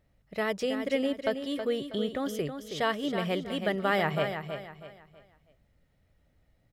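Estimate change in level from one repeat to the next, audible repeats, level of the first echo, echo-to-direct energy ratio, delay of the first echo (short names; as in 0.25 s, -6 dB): -9.5 dB, 3, -8.0 dB, -7.5 dB, 0.322 s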